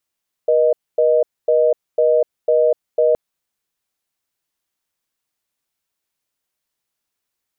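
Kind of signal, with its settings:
call progress tone reorder tone, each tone −14 dBFS 2.67 s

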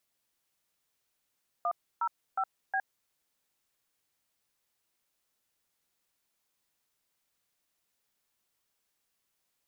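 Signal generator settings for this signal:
touch tones "105B", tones 64 ms, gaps 298 ms, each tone −29.5 dBFS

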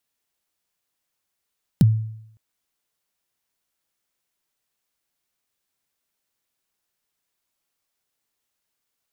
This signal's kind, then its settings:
synth kick length 0.56 s, from 220 Hz, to 110 Hz, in 27 ms, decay 0.74 s, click on, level −8 dB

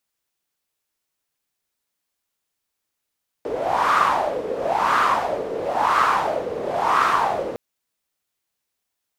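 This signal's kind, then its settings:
wind from filtered noise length 4.11 s, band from 460 Hz, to 1,200 Hz, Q 5.1, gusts 4, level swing 10 dB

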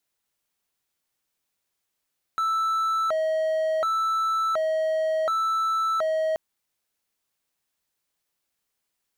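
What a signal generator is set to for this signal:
siren hi-lo 634–1,320 Hz 0.69 per second triangle −19.5 dBFS 3.98 s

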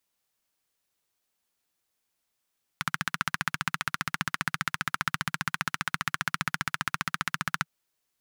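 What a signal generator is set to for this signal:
pulse-train model of a single-cylinder engine, steady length 4.85 s, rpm 1,800, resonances 160/1,400 Hz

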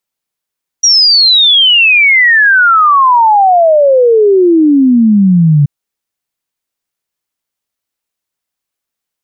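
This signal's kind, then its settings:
exponential sine sweep 5,800 Hz → 140 Hz 4.83 s −3.5 dBFS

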